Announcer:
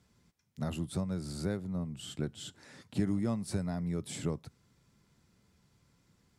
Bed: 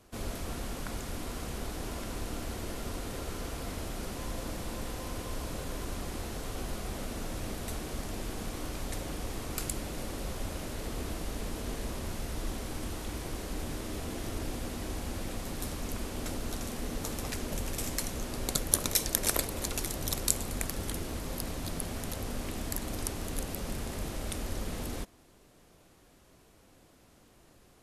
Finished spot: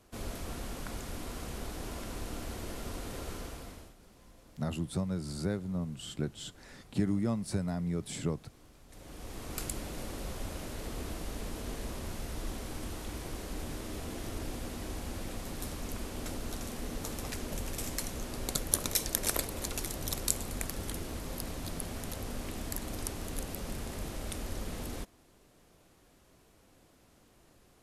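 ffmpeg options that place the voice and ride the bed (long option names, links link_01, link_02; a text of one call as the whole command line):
ffmpeg -i stem1.wav -i stem2.wav -filter_complex "[0:a]adelay=4000,volume=1dB[link_01];[1:a]volume=16dB,afade=type=out:start_time=3.32:duration=0.63:silence=0.11885,afade=type=in:start_time=8.88:duration=0.72:silence=0.11885[link_02];[link_01][link_02]amix=inputs=2:normalize=0" out.wav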